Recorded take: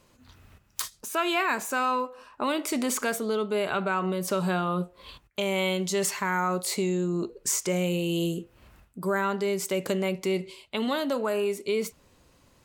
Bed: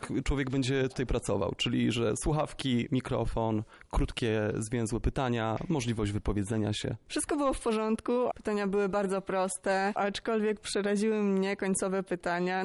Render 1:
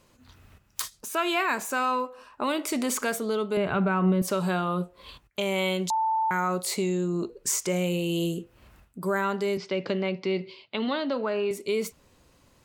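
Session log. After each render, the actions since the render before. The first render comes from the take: 3.57–4.22 tone controls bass +12 dB, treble -15 dB; 5.9–6.31 bleep 886 Hz -22 dBFS; 9.57–11.51 Chebyshev band-pass 110–5000 Hz, order 4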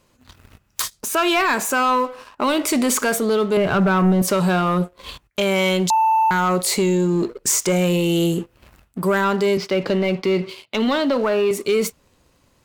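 sample leveller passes 2; in parallel at -3 dB: limiter -23 dBFS, peak gain reduction 11 dB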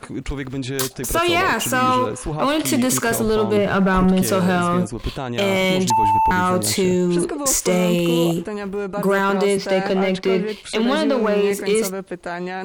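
add bed +3 dB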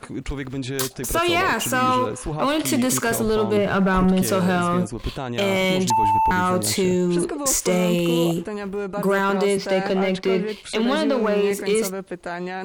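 gain -2 dB

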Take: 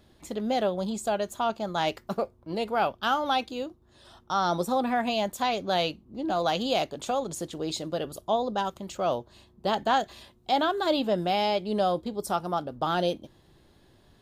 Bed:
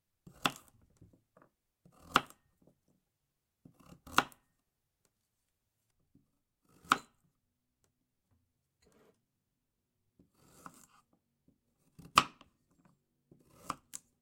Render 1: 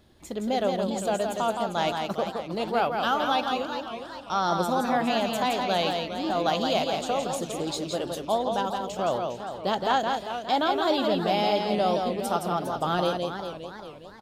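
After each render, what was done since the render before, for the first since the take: echo 0.168 s -4.5 dB; warbling echo 0.404 s, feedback 45%, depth 181 cents, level -9.5 dB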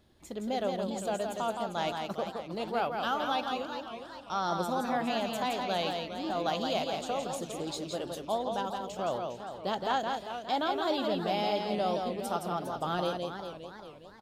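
gain -6 dB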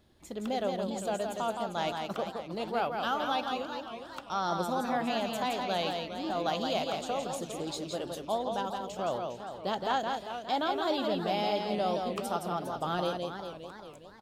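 add bed -17 dB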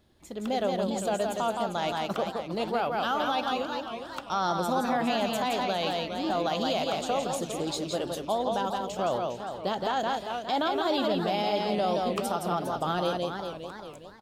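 limiter -23 dBFS, peak gain reduction 6.5 dB; AGC gain up to 5 dB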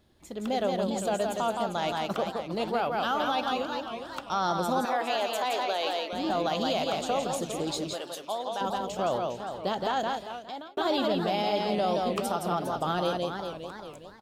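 4.85–6.13 HPF 340 Hz 24 dB/oct; 7.93–8.61 HPF 930 Hz 6 dB/oct; 9.98–10.77 fade out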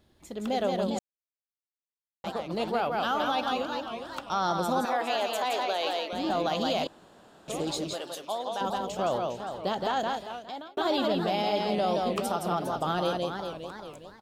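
0.99–2.24 mute; 6.87–7.48 room tone

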